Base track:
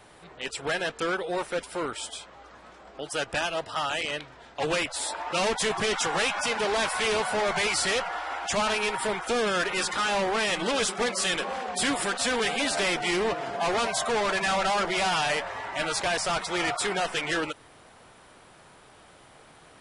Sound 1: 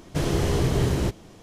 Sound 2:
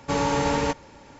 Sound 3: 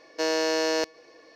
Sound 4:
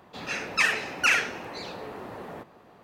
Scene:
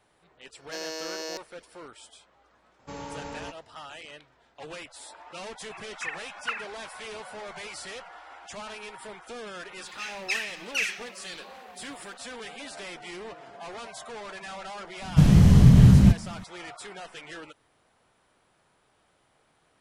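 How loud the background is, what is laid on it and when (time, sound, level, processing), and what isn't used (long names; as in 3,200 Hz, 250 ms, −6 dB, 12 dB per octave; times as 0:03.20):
base track −14 dB
0:00.53: mix in 3 −12.5 dB + high-shelf EQ 4,500 Hz +11.5 dB
0:02.79: mix in 2 −15.5 dB
0:05.44: mix in 4 −12.5 dB + three sine waves on the formant tracks
0:09.71: mix in 4 −4 dB + inverse Chebyshev high-pass filter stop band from 590 Hz, stop band 60 dB
0:15.02: mix in 1 −2 dB + low shelf with overshoot 270 Hz +9.5 dB, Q 3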